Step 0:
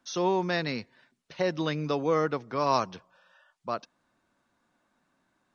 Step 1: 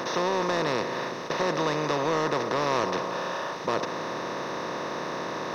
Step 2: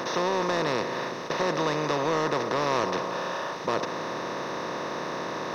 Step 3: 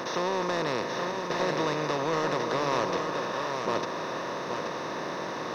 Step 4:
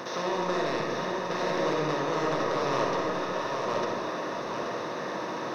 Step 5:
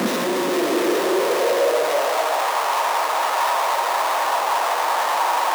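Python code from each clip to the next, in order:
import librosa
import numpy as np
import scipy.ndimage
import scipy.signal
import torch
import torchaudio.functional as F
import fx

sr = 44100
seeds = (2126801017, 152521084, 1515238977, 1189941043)

y1 = fx.bin_compress(x, sr, power=0.2)
y1 = fx.leveller(y1, sr, passes=1)
y1 = y1 * librosa.db_to_amplitude(-8.5)
y2 = y1
y3 = y2 + 10.0 ** (-5.5 / 20.0) * np.pad(y2, (int(828 * sr / 1000.0), 0))[:len(y2)]
y3 = y3 * librosa.db_to_amplitude(-2.5)
y4 = fx.rev_freeverb(y3, sr, rt60_s=1.5, hf_ratio=0.35, predelay_ms=15, drr_db=-0.5)
y4 = y4 * librosa.db_to_amplitude(-3.5)
y5 = fx.schmitt(y4, sr, flips_db=-44.5)
y5 = fx.filter_sweep_highpass(y5, sr, from_hz=220.0, to_hz=830.0, start_s=0.05, end_s=2.52, q=3.8)
y5 = y5 * librosa.db_to_amplitude(5.5)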